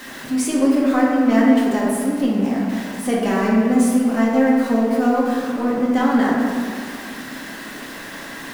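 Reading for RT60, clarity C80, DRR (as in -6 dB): 2.1 s, 1.0 dB, -6.0 dB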